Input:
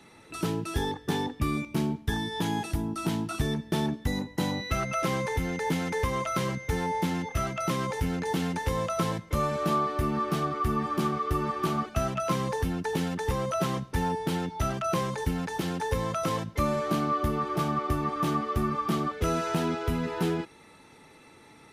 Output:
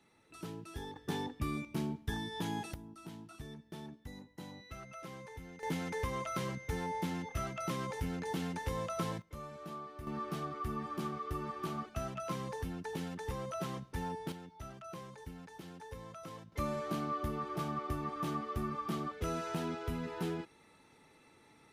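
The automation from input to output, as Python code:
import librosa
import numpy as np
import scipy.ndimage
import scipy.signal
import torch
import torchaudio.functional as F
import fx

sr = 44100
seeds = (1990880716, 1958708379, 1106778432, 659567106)

y = fx.gain(x, sr, db=fx.steps((0.0, -15.0), (0.96, -8.5), (2.74, -19.5), (5.63, -8.5), (9.22, -19.0), (10.07, -11.0), (14.32, -19.0), (16.52, -9.5)))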